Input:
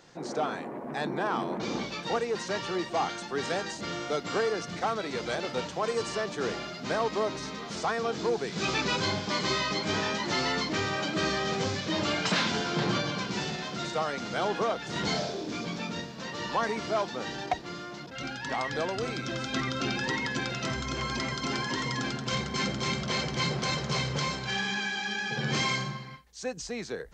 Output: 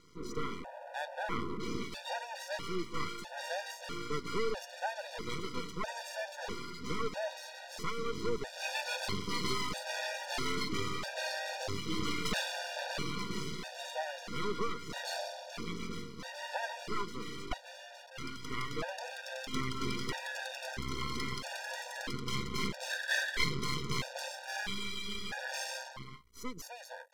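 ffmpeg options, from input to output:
-filter_complex "[0:a]asplit=3[a][b][c];[a]afade=t=out:st=22.89:d=0.02[d];[b]highpass=f=1.7k:t=q:w=12,afade=t=in:st=22.89:d=0.02,afade=t=out:st=23.43:d=0.02[e];[c]afade=t=in:st=23.43:d=0.02[f];[d][e][f]amix=inputs=3:normalize=0,aeval=exprs='max(val(0),0)':c=same,afftfilt=real='re*gt(sin(2*PI*0.77*pts/sr)*(1-2*mod(floor(b*sr/1024/480),2)),0)':imag='im*gt(sin(2*PI*0.77*pts/sr)*(1-2*mod(floor(b*sr/1024/480),2)),0)':win_size=1024:overlap=0.75"

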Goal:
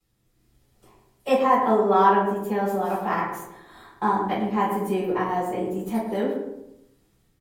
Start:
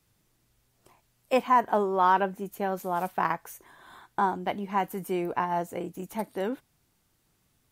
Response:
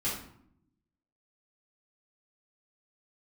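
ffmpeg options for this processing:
-filter_complex "[0:a]dynaudnorm=f=150:g=5:m=7dB,asplit=2[a][b];[b]adelay=110,lowpass=f=1.4k:p=1,volume=-5.5dB,asplit=2[c][d];[d]adelay=110,lowpass=f=1.4k:p=1,volume=0.47,asplit=2[e][f];[f]adelay=110,lowpass=f=1.4k:p=1,volume=0.47,asplit=2[g][h];[h]adelay=110,lowpass=f=1.4k:p=1,volume=0.47,asplit=2[i][j];[j]adelay=110,lowpass=f=1.4k:p=1,volume=0.47,asplit=2[k][l];[l]adelay=110,lowpass=f=1.4k:p=1,volume=0.47[m];[a][c][e][g][i][k][m]amix=inputs=7:normalize=0[n];[1:a]atrim=start_sample=2205,asetrate=66150,aresample=44100[o];[n][o]afir=irnorm=-1:irlink=0,asetrate=45938,aresample=44100,volume=-6.5dB"

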